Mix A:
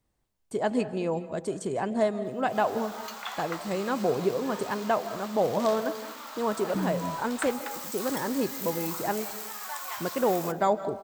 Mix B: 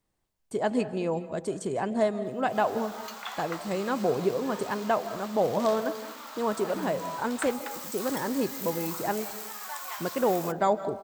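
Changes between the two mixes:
second voice: add low-shelf EQ 430 Hz −11.5 dB
background: send −8.5 dB

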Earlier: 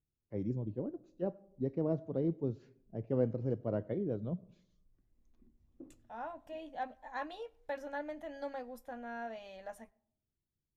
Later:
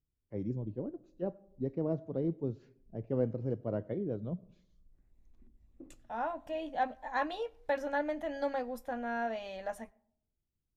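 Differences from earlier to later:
second voice +7.5 dB
master: add high-shelf EQ 8,300 Hz −4 dB

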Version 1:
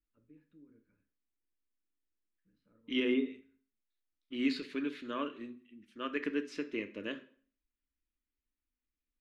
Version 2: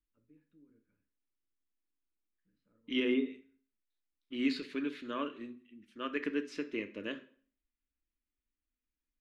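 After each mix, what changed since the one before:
first voice −4.0 dB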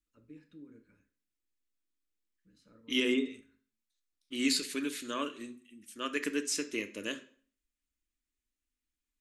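first voice +11.5 dB
master: remove high-frequency loss of the air 340 metres

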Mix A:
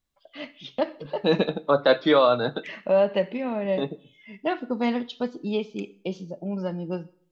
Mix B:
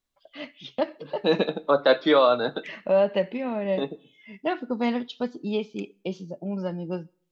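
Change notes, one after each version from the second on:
first voice: send −8.5 dB
second voice: add high-pass filter 200 Hz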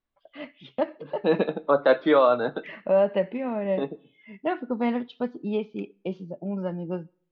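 master: add low-pass filter 2,300 Hz 12 dB per octave

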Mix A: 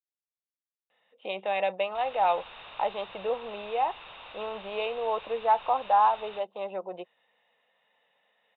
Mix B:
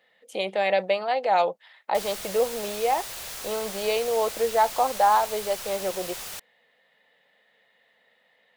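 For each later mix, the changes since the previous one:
speech: entry −0.90 s
master: remove Chebyshev low-pass with heavy ripple 3,800 Hz, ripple 9 dB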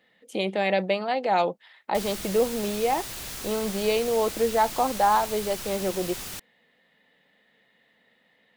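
master: add low shelf with overshoot 400 Hz +8 dB, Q 1.5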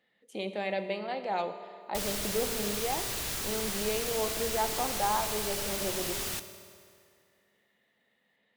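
speech −11.0 dB
reverb: on, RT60 2.4 s

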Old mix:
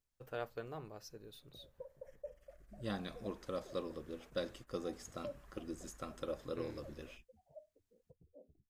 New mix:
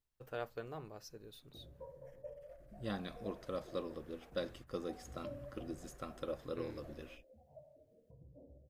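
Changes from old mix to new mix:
second voice: add parametric band 7,000 Hz −5 dB 0.87 octaves
reverb: on, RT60 1.1 s

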